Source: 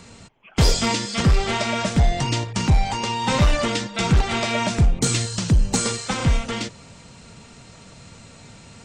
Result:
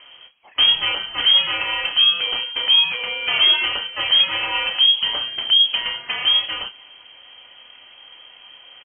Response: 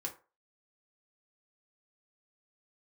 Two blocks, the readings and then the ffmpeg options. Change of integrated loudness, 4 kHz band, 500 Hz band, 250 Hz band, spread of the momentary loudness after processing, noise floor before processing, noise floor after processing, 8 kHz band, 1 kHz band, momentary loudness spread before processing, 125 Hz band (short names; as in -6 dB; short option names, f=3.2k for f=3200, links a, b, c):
+5.0 dB, +14.5 dB, -10.5 dB, under -20 dB, 9 LU, -46 dBFS, -47 dBFS, under -40 dB, -5.0 dB, 5 LU, under -25 dB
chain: -filter_complex "[0:a]lowpass=f=2.8k:t=q:w=0.5098,lowpass=f=2.8k:t=q:w=0.6013,lowpass=f=2.8k:t=q:w=0.9,lowpass=f=2.8k:t=q:w=2.563,afreqshift=-3300,asplit=2[a][b];[b]adelay=31,volume=-10dB[c];[a][c]amix=inputs=2:normalize=0"